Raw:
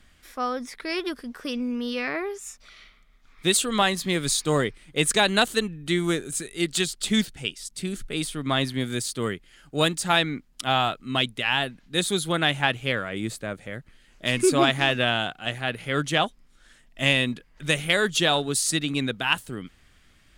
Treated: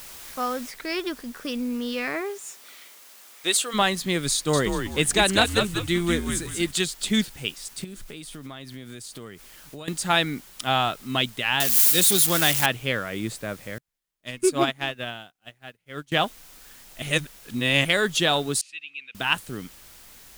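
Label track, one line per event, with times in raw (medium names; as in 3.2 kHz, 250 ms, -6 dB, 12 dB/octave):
0.710000	0.710000	noise floor step -42 dB -49 dB
2.210000	3.730000	high-pass 180 Hz -> 540 Hz
4.340000	6.710000	frequency-shifting echo 191 ms, feedback 33%, per repeat -110 Hz, level -5 dB
7.840000	9.880000	compression 12:1, threshold -35 dBFS
11.600000	12.660000	zero-crossing glitches of -13 dBFS
13.780000	16.120000	upward expansion 2.5:1, over -41 dBFS
17.020000	17.850000	reverse
18.610000	19.150000	band-pass filter 2.6 kHz, Q 10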